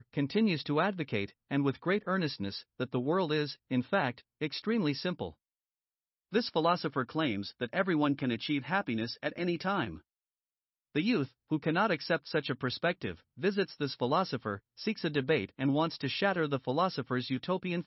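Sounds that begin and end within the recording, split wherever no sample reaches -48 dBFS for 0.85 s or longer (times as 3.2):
6.32–9.99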